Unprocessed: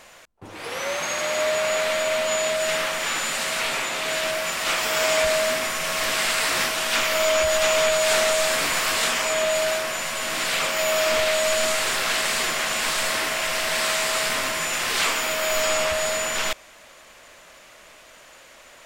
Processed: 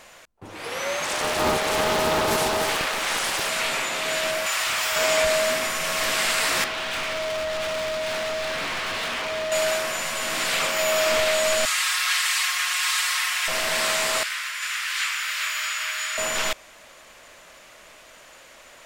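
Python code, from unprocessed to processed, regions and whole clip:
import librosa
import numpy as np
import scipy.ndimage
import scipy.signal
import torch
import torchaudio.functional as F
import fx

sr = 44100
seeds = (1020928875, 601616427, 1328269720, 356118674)

y = fx.chain(x, sr, fx.echo_single(ms=97, db=-9.0),
    fx.doppler_dist(depth_ms=0.93), at=(1.04, 3.49))
y = fx.chain(y, sr, fx.highpass(hz=780.0, slope=12),
    fx.clip_hard(threshold_db=-22.0),
    fx.env_flatten(amount_pct=100), at=(4.46, 4.96))
y = fx.chain(y, sr, fx.lowpass(hz=4200.0, slope=24),
    fx.overload_stage(gain_db=26.0), at=(6.64, 9.52))
y = fx.chain(y, sr, fx.highpass(hz=1100.0, slope=24),
    fx.notch(hz=1500.0, q=20.0),
    fx.comb(ms=5.5, depth=0.63), at=(11.65, 13.48))
y = fx.chain(y, sr, fx.highpass(hz=1400.0, slope=24),
    fx.high_shelf(hz=3400.0, db=-8.0),
    fx.echo_single(ms=391, db=-3.0), at=(14.23, 16.18))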